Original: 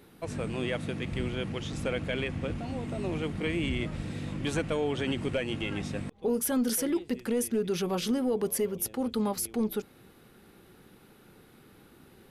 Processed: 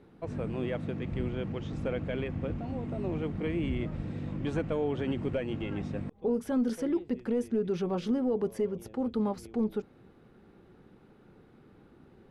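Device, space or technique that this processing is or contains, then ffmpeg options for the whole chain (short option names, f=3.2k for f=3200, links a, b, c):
through cloth: -af "lowpass=7.4k,highshelf=f=2k:g=-15"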